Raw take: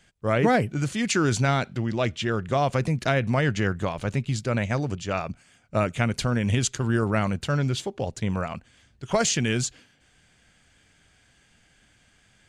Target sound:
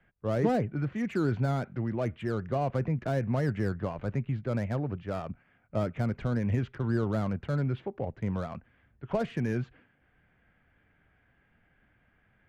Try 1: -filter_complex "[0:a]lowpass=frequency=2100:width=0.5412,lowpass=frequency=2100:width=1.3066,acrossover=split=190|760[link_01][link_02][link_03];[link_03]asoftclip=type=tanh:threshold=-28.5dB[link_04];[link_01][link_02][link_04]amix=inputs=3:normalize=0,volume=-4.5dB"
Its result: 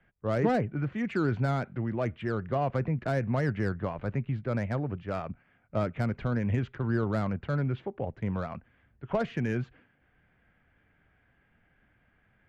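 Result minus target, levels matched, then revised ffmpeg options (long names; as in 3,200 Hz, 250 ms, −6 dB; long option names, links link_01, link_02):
soft clipping: distortion −5 dB
-filter_complex "[0:a]lowpass=frequency=2100:width=0.5412,lowpass=frequency=2100:width=1.3066,acrossover=split=190|760[link_01][link_02][link_03];[link_03]asoftclip=type=tanh:threshold=-35.5dB[link_04];[link_01][link_02][link_04]amix=inputs=3:normalize=0,volume=-4.5dB"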